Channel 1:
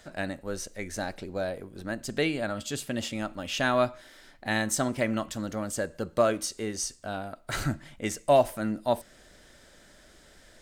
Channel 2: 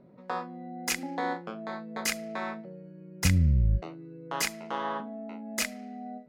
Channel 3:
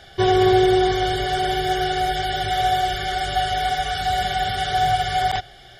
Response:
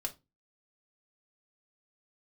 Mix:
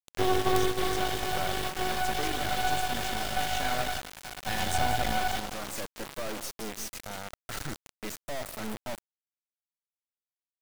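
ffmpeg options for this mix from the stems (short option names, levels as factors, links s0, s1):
-filter_complex "[0:a]asoftclip=type=tanh:threshold=0.0531,volume=0.841,asplit=3[s0][s1][s2];[s1]volume=0.251[s3];[1:a]bandreject=f=243.9:t=h:w=4,bandreject=f=487.8:t=h:w=4,bandreject=f=731.7:t=h:w=4,bandreject=f=975.6:t=h:w=4,bandreject=f=1219.5:t=h:w=4,bandreject=f=1463.4:t=h:w=4,bandreject=f=1707.3:t=h:w=4,bandreject=f=1951.2:t=h:w=4,bandreject=f=2195.1:t=h:w=4,bandreject=f=2439:t=h:w=4,bandreject=f=2682.9:t=h:w=4,bandreject=f=2926.8:t=h:w=4,bandreject=f=3170.7:t=h:w=4,bandreject=f=3414.6:t=h:w=4,bandreject=f=3658.5:t=h:w=4,bandreject=f=3902.4:t=h:w=4,bandreject=f=4146.3:t=h:w=4,bandreject=f=4390.2:t=h:w=4,bandreject=f=4634.1:t=h:w=4,bandreject=f=4878:t=h:w=4,bandreject=f=5121.9:t=h:w=4,bandreject=f=5365.8:t=h:w=4,bandreject=f=5609.7:t=h:w=4,bandreject=f=5853.6:t=h:w=4,bandreject=f=6097.5:t=h:w=4,bandreject=f=6341.4:t=h:w=4,bandreject=f=6585.3:t=h:w=4,acrusher=bits=7:mix=0:aa=0.000001,adelay=1350,volume=0.299,asplit=2[s4][s5];[s5]volume=0.355[s6];[2:a]aeval=exprs='val(0)+0.00447*(sin(2*PI*60*n/s)+sin(2*PI*2*60*n/s)/2+sin(2*PI*3*60*n/s)/3+sin(2*PI*4*60*n/s)/4+sin(2*PI*5*60*n/s)/5)':c=same,volume=0.562,asplit=2[s7][s8];[s8]volume=0.224[s9];[s2]apad=whole_len=255510[s10];[s7][s10]sidechaingate=range=0.0316:threshold=0.00631:ratio=16:detection=peak[s11];[s3][s6][s9]amix=inputs=3:normalize=0,aecho=0:1:181|362|543|724:1|0.3|0.09|0.027[s12];[s0][s4][s11][s12]amix=inputs=4:normalize=0,acrusher=bits=3:dc=4:mix=0:aa=0.000001"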